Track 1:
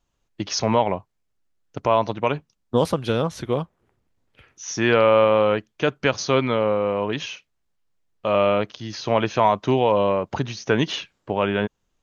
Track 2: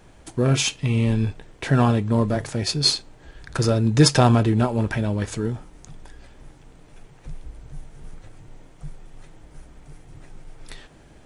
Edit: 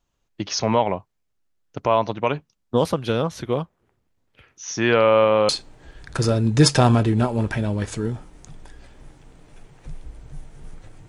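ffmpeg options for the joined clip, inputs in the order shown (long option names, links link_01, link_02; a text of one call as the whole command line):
ffmpeg -i cue0.wav -i cue1.wav -filter_complex "[0:a]apad=whole_dur=11.08,atrim=end=11.08,atrim=end=5.492[link_01];[1:a]atrim=start=2.888:end=8.48[link_02];[link_01][link_02]acrossfade=duration=0.004:curve1=hsin:curve2=hsin" out.wav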